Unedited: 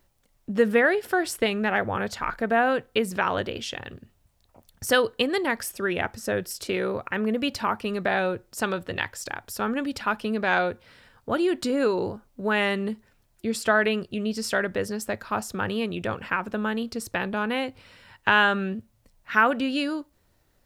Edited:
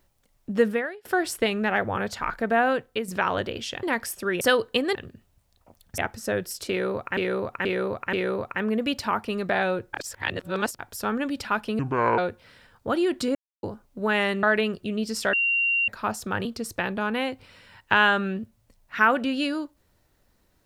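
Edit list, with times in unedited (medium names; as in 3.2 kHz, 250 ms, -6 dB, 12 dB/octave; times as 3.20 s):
0.64–1.05 s: fade out quadratic, to -22 dB
2.72–3.08 s: fade out, to -7.5 dB
3.83–4.86 s: swap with 5.40–5.98 s
6.69–7.17 s: loop, 4 plays
8.49–9.35 s: reverse
10.35–10.60 s: speed 64%
11.77–12.05 s: mute
12.85–13.71 s: delete
14.61–15.16 s: bleep 2.76 kHz -20 dBFS
15.73–16.81 s: delete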